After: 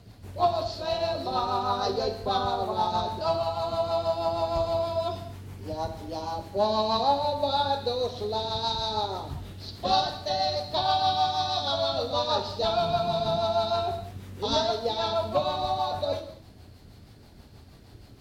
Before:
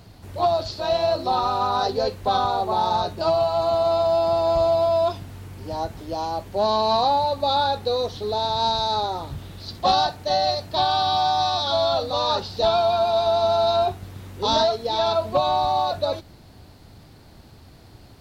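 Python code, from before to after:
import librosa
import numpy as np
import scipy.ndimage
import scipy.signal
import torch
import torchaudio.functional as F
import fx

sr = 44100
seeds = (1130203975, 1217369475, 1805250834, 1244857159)

y = fx.octave_divider(x, sr, octaves=2, level_db=3.0, at=(12.79, 13.38))
y = fx.rotary(y, sr, hz=6.3)
y = fx.rev_gated(y, sr, seeds[0], gate_ms=280, shape='falling', drr_db=5.5)
y = y * librosa.db_to_amplitude(-2.5)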